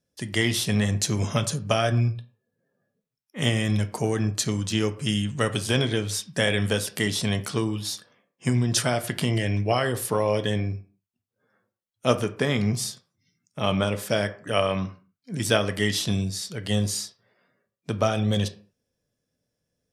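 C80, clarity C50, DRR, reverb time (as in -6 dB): 19.0 dB, 15.5 dB, 8.5 dB, 0.45 s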